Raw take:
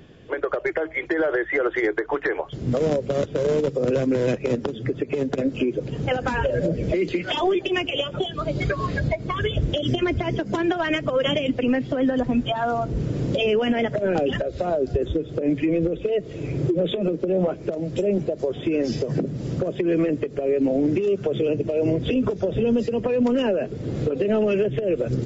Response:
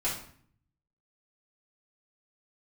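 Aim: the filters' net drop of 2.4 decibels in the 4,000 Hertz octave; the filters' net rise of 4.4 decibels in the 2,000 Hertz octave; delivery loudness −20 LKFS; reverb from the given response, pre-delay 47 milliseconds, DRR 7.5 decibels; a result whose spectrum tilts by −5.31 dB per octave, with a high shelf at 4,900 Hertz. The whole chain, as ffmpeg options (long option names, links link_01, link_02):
-filter_complex "[0:a]equalizer=frequency=2000:width_type=o:gain=7.5,equalizer=frequency=4000:width_type=o:gain=-5,highshelf=frequency=4900:gain=-7,asplit=2[link_01][link_02];[1:a]atrim=start_sample=2205,adelay=47[link_03];[link_02][link_03]afir=irnorm=-1:irlink=0,volume=-14.5dB[link_04];[link_01][link_04]amix=inputs=2:normalize=0,volume=2.5dB"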